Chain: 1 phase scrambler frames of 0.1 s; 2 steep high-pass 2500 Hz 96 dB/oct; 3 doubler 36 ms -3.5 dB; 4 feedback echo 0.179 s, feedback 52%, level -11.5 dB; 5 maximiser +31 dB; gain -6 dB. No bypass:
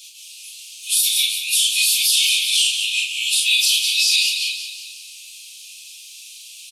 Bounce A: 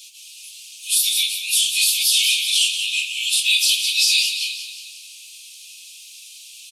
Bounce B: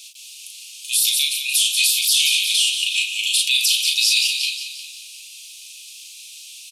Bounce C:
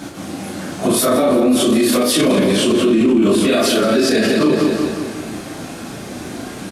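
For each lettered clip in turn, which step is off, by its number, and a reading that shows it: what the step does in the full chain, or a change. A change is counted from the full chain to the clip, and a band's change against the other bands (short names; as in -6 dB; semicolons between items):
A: 3, momentary loudness spread change -6 LU; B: 1, momentary loudness spread change +1 LU; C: 2, crest factor change -5.0 dB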